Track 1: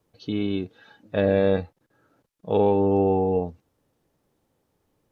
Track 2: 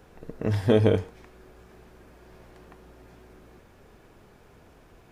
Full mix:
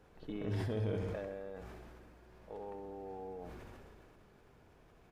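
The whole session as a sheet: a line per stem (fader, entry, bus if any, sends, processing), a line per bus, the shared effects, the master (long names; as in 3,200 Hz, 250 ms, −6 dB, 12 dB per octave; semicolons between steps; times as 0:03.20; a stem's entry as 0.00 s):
−5.5 dB, 0.00 s, no send, no echo send, spectral tilt −2 dB per octave; brickwall limiter −12.5 dBFS, peak gain reduction 7 dB; resonant band-pass 1,200 Hz, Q 0.78; automatic ducking −12 dB, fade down 1.10 s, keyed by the second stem
−10.0 dB, 0.00 s, no send, echo send −8 dB, brickwall limiter −20.5 dBFS, peak gain reduction 11.5 dB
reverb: not used
echo: repeating echo 65 ms, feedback 48%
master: high-shelf EQ 5,800 Hz −5 dB; level that may fall only so fast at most 21 dB per second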